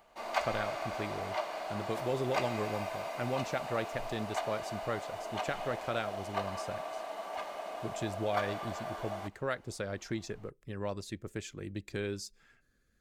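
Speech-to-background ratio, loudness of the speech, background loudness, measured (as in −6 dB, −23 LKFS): 0.0 dB, −39.0 LKFS, −39.0 LKFS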